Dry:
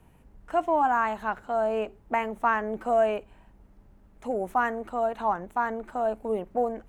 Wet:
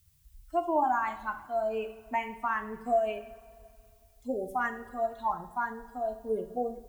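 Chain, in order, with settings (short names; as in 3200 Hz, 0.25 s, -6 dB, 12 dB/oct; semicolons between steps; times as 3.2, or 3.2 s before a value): per-bin expansion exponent 2; limiter -21 dBFS, peak gain reduction 6.5 dB; added noise blue -70 dBFS; two-slope reverb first 0.49 s, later 2.4 s, from -17 dB, DRR 5.5 dB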